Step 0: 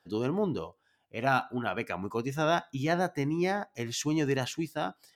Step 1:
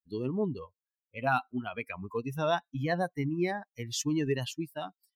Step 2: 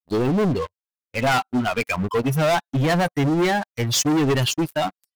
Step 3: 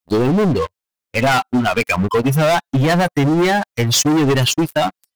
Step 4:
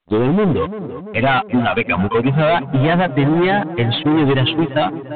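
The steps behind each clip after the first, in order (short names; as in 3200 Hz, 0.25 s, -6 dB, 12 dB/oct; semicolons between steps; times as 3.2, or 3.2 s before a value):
per-bin expansion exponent 2; in parallel at -2 dB: compressor, threshold -40 dBFS, peak gain reduction 15.5 dB
sample leveller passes 5
compressor, threshold -21 dBFS, peak gain reduction 4 dB; gain +8 dB
tape echo 0.344 s, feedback 73%, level -10 dB, low-pass 1300 Hz; µ-law 64 kbps 8000 Hz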